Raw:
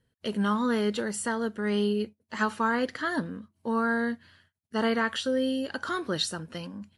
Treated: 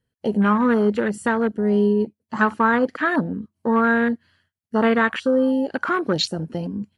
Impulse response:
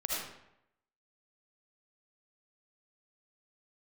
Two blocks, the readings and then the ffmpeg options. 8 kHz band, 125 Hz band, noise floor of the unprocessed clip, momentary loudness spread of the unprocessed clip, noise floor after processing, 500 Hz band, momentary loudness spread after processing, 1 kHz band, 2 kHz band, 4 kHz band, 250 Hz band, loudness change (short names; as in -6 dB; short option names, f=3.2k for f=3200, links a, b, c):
n/a, +9.0 dB, -79 dBFS, 10 LU, -82 dBFS, +8.5 dB, 9 LU, +8.5 dB, +8.0 dB, +2.5 dB, +9.0 dB, +8.0 dB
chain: -filter_complex "[0:a]bandreject=f=3.7k:w=15,afwtdn=0.0178,asplit=2[a][b];[b]acompressor=threshold=-36dB:ratio=6,volume=0dB[c];[a][c]amix=inputs=2:normalize=0,volume=6.5dB"